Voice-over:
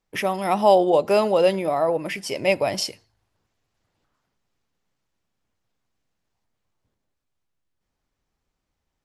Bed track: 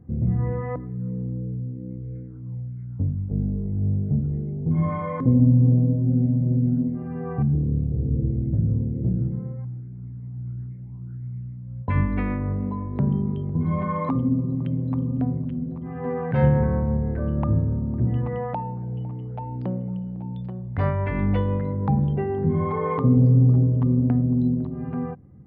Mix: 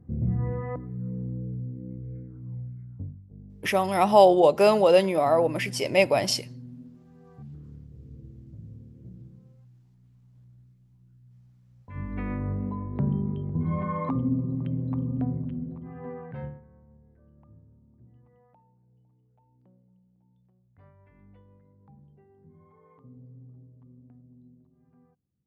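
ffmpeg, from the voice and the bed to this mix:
-filter_complex "[0:a]adelay=3500,volume=0dB[a];[1:a]volume=14dB,afade=t=out:st=2.61:d=0.61:silence=0.125893,afade=t=in:st=11.89:d=0.5:silence=0.125893,afade=t=out:st=15.47:d=1.14:silence=0.0354813[b];[a][b]amix=inputs=2:normalize=0"

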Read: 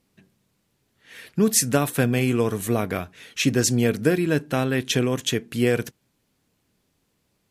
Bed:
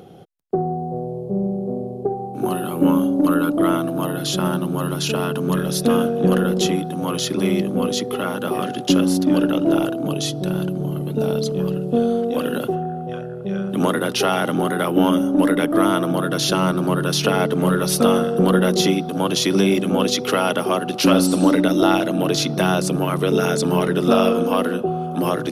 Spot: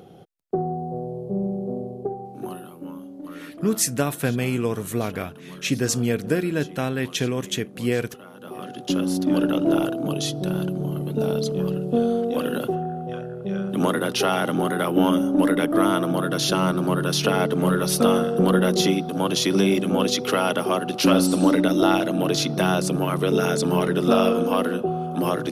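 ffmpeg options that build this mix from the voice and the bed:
-filter_complex "[0:a]adelay=2250,volume=-2.5dB[a];[1:a]volume=14.5dB,afade=t=out:st=1.8:d=1:silence=0.141254,afade=t=in:st=8.32:d=1.19:silence=0.125893[b];[a][b]amix=inputs=2:normalize=0"

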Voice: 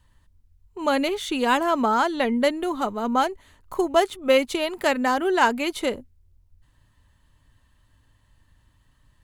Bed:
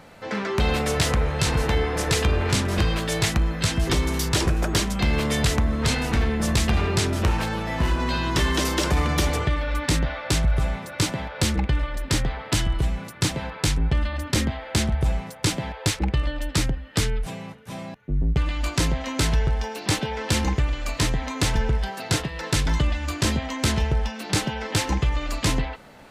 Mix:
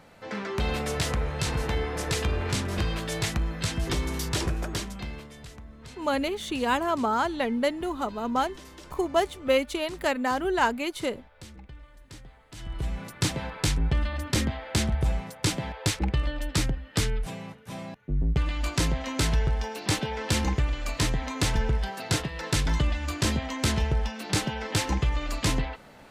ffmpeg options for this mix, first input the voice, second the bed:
-filter_complex "[0:a]adelay=5200,volume=-4.5dB[a];[1:a]volume=14.5dB,afade=t=out:st=4.45:d=0.85:silence=0.133352,afade=t=in:st=12.55:d=0.52:silence=0.0944061[b];[a][b]amix=inputs=2:normalize=0"

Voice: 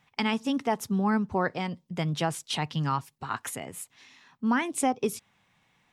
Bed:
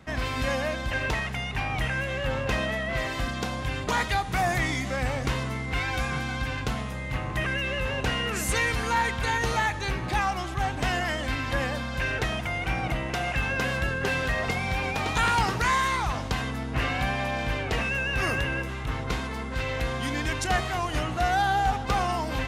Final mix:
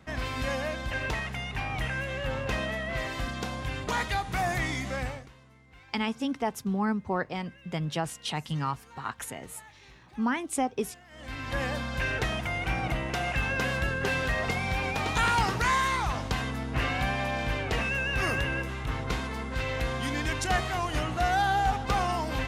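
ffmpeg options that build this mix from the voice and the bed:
-filter_complex "[0:a]adelay=5750,volume=-2.5dB[a];[1:a]volume=21dB,afade=t=out:st=4.98:d=0.3:silence=0.0749894,afade=t=in:st=11.1:d=0.61:silence=0.0595662[b];[a][b]amix=inputs=2:normalize=0"

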